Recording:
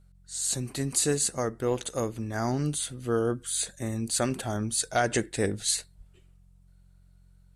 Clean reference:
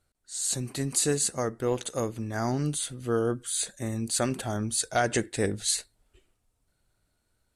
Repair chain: de-hum 45 Hz, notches 4; 5.97–6.09 s: high-pass 140 Hz 24 dB/octave

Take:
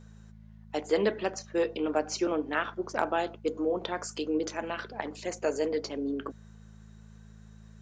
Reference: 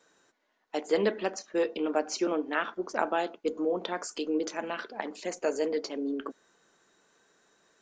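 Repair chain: clip repair -14 dBFS; de-hum 53.8 Hz, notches 4

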